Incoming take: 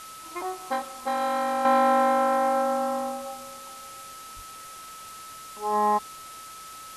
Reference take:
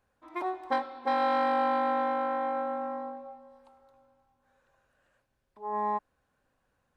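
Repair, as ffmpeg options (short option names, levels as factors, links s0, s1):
-filter_complex "[0:a]bandreject=f=1300:w=30,asplit=3[s0][s1][s2];[s0]afade=t=out:st=4.35:d=0.02[s3];[s1]highpass=f=140:w=0.5412,highpass=f=140:w=1.3066,afade=t=in:st=4.35:d=0.02,afade=t=out:st=4.47:d=0.02[s4];[s2]afade=t=in:st=4.47:d=0.02[s5];[s3][s4][s5]amix=inputs=3:normalize=0,afwtdn=0.0063,asetnsamples=n=441:p=0,asendcmd='1.65 volume volume -7.5dB',volume=1"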